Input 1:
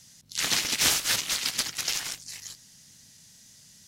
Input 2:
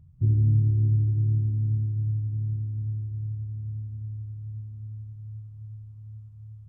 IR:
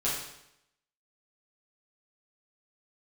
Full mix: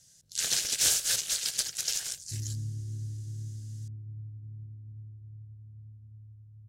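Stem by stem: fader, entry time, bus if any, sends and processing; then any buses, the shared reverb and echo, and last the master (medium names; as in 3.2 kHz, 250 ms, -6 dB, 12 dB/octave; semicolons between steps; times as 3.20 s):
-4.5 dB, 0.00 s, no send, ten-band graphic EQ 250 Hz -11 dB, 500 Hz +4 dB, 1 kHz -10 dB, 2 kHz -6 dB, 8 kHz +7 dB
-15.0 dB, 2.10 s, no send, none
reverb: none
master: peaking EQ 1.6 kHz +8 dB 0.22 oct; tape noise reduction on one side only decoder only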